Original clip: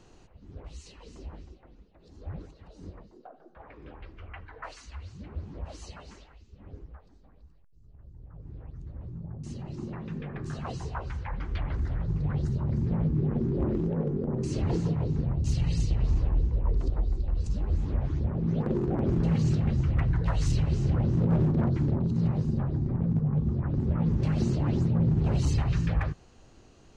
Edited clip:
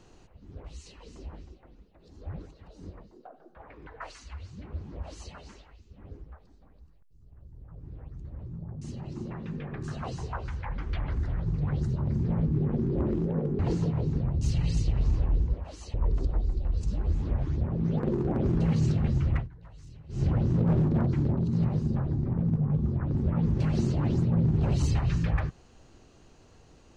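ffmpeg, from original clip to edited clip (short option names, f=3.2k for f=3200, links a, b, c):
-filter_complex "[0:a]asplit=7[a][b][c][d][e][f][g];[a]atrim=end=3.872[h];[b]atrim=start=4.488:end=14.212[i];[c]atrim=start=14.618:end=16.572[j];[d]atrim=start=5.548:end=5.952[k];[e]atrim=start=16.568:end=20.11,asetpts=PTS-STARTPTS,afade=t=out:st=3.402:d=0.14:silence=0.0749894[l];[f]atrim=start=20.11:end=20.72,asetpts=PTS-STARTPTS,volume=-22.5dB[m];[g]atrim=start=20.72,asetpts=PTS-STARTPTS,afade=t=in:d=0.14:silence=0.0749894[n];[h][i]acrossfade=d=0.004:c1=hsin:c2=hsin[o];[o][j]acrossfade=d=0.004:c1=hsin:c2=hsin[p];[p][k]acrossfade=d=0.004:c1=hsin:c2=hsin[q];[l][m][n]concat=n=3:v=0:a=1[r];[q][r]acrossfade=d=0.004:c1=hsin:c2=hsin"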